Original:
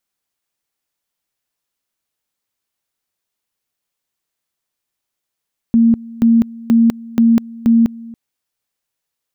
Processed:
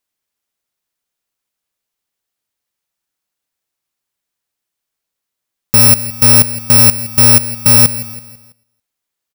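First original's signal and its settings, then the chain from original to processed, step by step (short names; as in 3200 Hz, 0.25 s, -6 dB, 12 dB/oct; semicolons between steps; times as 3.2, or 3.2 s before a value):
two-level tone 230 Hz -7 dBFS, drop 22 dB, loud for 0.20 s, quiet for 0.28 s, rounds 5
FFT order left unsorted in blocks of 128 samples; in parallel at -5 dB: sample gate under -24.5 dBFS; on the sum: feedback echo 0.165 s, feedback 44%, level -15.5 dB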